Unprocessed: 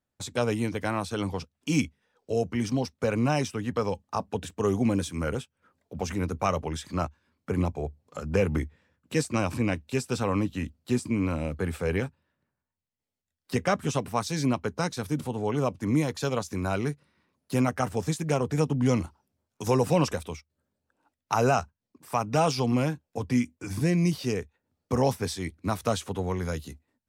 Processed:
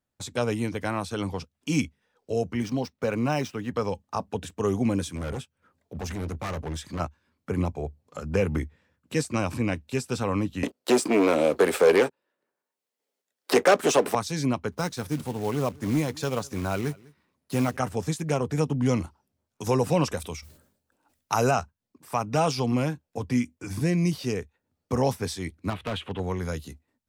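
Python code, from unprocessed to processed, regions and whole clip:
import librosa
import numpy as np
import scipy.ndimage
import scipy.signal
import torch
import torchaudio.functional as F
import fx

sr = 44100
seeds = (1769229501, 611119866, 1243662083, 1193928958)

y = fx.chain(x, sr, fx.median_filter(points=5),
    fx.peak_eq(hz=66.0, db=-6.5, octaves=1.5), at=(2.62, 3.74))
y = fx.chain(y, sr, fx.peak_eq(hz=64.0, db=3.5, octaves=2.5),
    fx.clip_hard(threshold_db=-29.0), at=(5.15, 7.0))
y = fx.chain(y, sr, fx.leveller(passes=3),
    fx.highpass_res(hz=410.0, q=1.9),
    fx.band_squash(depth_pct=40), at=(10.63, 14.15))
y = fx.chain(y, sr, fx.quant_float(bits=2),
    fx.clip_hard(threshold_db=-16.5),
    fx.echo_single(ms=199, db=-24.0), at=(14.72, 17.77))
y = fx.chain(y, sr, fx.high_shelf(hz=5600.0, db=8.0),
    fx.sustainer(db_per_s=94.0), at=(20.17, 21.51))
y = fx.chain(y, sr, fx.lowpass(hz=11000.0, slope=12),
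    fx.high_shelf_res(hz=4200.0, db=-12.5, q=3.0),
    fx.clip_hard(threshold_db=-26.0), at=(25.7, 26.2))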